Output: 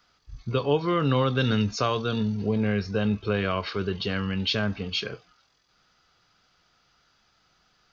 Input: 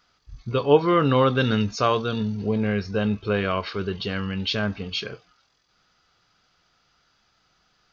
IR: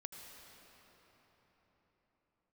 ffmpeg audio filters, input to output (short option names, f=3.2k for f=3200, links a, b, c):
-filter_complex "[0:a]acrossover=split=170|3000[a][b][c];[b]acompressor=threshold=-24dB:ratio=2.5[d];[a][d][c]amix=inputs=3:normalize=0"